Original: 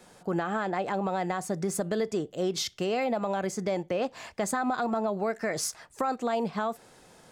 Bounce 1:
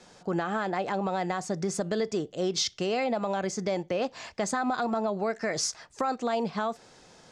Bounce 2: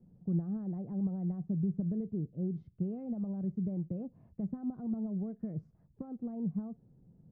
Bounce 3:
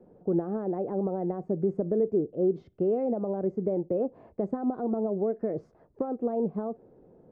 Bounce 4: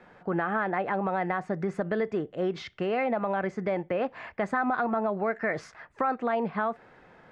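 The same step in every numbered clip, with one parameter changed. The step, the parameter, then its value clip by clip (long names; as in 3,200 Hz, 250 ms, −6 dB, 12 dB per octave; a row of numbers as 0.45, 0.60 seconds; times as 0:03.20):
low-pass with resonance, frequency: 5,900, 160, 420, 1,900 Hertz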